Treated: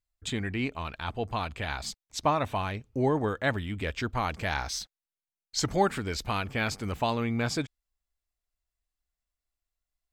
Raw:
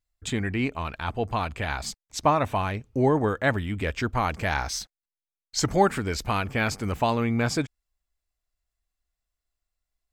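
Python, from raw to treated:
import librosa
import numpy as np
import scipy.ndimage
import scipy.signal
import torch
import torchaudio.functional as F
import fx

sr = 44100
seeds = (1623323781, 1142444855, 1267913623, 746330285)

y = fx.dynamic_eq(x, sr, hz=3700.0, q=1.7, threshold_db=-49.0, ratio=4.0, max_db=5)
y = y * 10.0 ** (-4.5 / 20.0)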